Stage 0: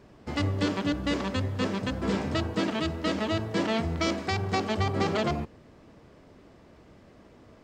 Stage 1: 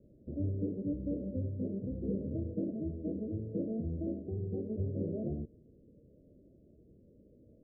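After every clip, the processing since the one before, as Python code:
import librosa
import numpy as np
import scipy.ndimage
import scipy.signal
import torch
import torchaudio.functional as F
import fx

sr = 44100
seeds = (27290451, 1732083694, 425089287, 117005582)

y = scipy.signal.sosfilt(scipy.signal.butter(12, 590.0, 'lowpass', fs=sr, output='sos'), x)
y = fx.notch_cascade(y, sr, direction='rising', hz=0.8)
y = F.gain(torch.from_numpy(y), -6.0).numpy()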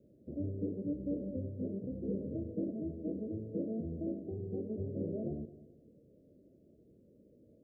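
y = fx.highpass(x, sr, hz=160.0, slope=6)
y = fx.echo_feedback(y, sr, ms=215, feedback_pct=33, wet_db=-17.0)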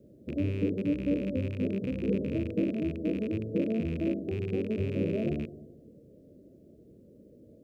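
y = fx.rattle_buzz(x, sr, strikes_db=-41.0, level_db=-43.0)
y = F.gain(torch.from_numpy(y), 8.0).numpy()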